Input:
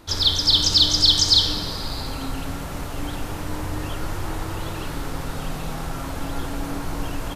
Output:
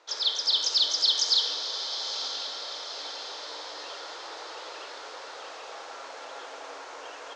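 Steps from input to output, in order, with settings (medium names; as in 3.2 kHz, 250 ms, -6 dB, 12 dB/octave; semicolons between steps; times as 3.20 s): elliptic band-pass 470–6500 Hz, stop band 40 dB; echo that smears into a reverb 970 ms, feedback 52%, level -9 dB; trim -6.5 dB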